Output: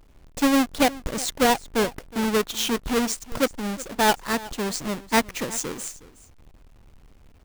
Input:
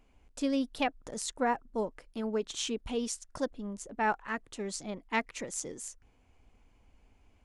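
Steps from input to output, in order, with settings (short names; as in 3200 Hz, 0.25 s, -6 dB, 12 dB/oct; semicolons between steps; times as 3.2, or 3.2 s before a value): half-waves squared off; echo 0.366 s -19 dB; gain +6 dB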